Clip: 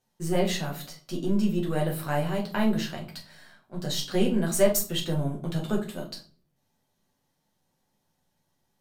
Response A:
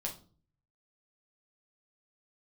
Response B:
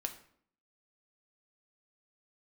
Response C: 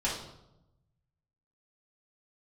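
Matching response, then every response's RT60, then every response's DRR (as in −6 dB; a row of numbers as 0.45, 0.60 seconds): A; 0.40, 0.60, 0.90 seconds; −1.0, 5.0, −6.5 decibels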